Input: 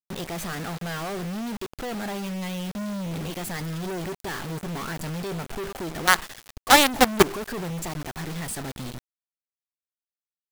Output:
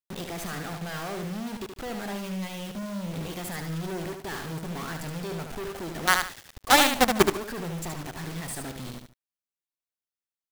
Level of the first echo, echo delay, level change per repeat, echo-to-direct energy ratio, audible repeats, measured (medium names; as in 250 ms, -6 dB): -6.0 dB, 74 ms, -12.0 dB, -5.5 dB, 2